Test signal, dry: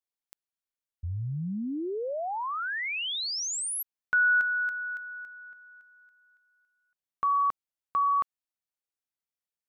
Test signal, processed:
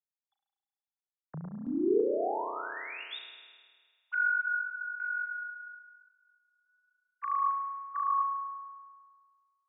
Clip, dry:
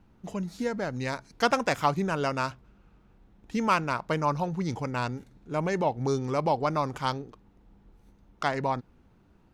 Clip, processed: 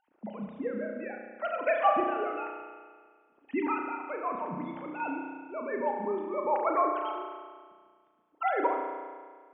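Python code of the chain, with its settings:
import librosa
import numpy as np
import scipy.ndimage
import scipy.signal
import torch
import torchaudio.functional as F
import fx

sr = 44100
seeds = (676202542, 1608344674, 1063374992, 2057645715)

y = fx.sine_speech(x, sr)
y = fx.chopper(y, sr, hz=0.6, depth_pct=60, duty_pct=20)
y = fx.rev_spring(y, sr, rt60_s=1.7, pass_ms=(33,), chirp_ms=25, drr_db=1.5)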